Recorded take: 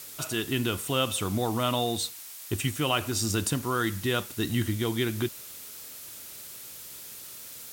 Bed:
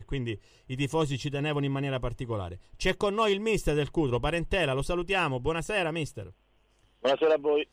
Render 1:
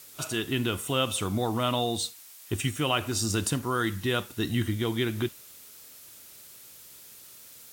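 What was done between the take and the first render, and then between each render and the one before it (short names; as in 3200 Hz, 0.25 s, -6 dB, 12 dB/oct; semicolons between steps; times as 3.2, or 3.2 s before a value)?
noise print and reduce 6 dB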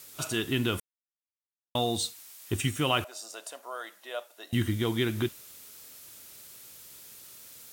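0.8–1.75 mute; 3.04–4.53 ladder high-pass 580 Hz, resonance 75%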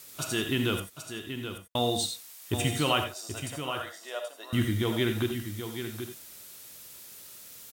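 echo 0.779 s -9 dB; non-linear reverb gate 0.11 s rising, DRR 6 dB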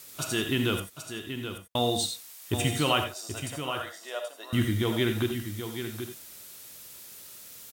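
gain +1 dB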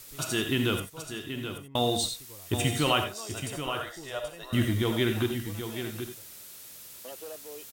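add bed -19.5 dB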